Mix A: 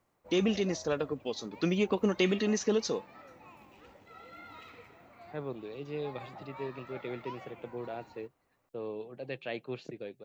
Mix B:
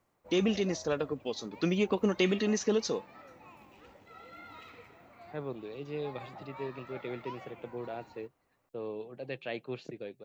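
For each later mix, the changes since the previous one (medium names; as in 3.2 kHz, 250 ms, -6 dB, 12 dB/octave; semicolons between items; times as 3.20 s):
no change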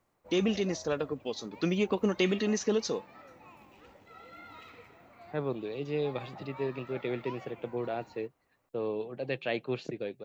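second voice +5.5 dB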